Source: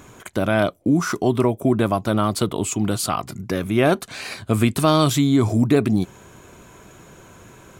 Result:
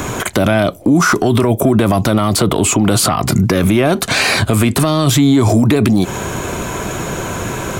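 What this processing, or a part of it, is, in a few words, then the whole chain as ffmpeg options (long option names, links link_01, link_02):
mastering chain: -filter_complex "[0:a]equalizer=frequency=690:width_type=o:width=0.77:gain=2,acrossover=split=300|2300[link_01][link_02][link_03];[link_01]acompressor=threshold=-24dB:ratio=4[link_04];[link_02]acompressor=threshold=-24dB:ratio=4[link_05];[link_03]acompressor=threshold=-34dB:ratio=4[link_06];[link_04][link_05][link_06]amix=inputs=3:normalize=0,acompressor=threshold=-24dB:ratio=2.5,asoftclip=type=tanh:threshold=-15.5dB,alimiter=level_in=27dB:limit=-1dB:release=50:level=0:latency=1,volume=-3.5dB"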